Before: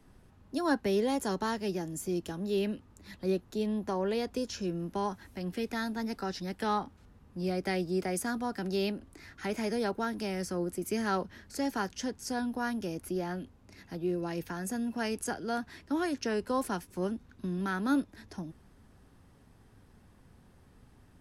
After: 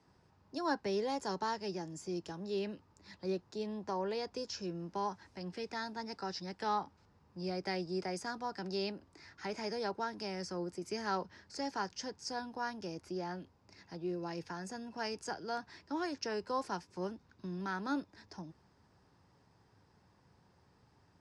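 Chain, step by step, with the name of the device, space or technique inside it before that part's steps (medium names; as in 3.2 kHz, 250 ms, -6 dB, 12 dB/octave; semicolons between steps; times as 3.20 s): car door speaker (cabinet simulation 97–7400 Hz, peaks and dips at 240 Hz -8 dB, 920 Hz +6 dB, 3.2 kHz -3 dB, 5 kHz +8 dB); trim -5.5 dB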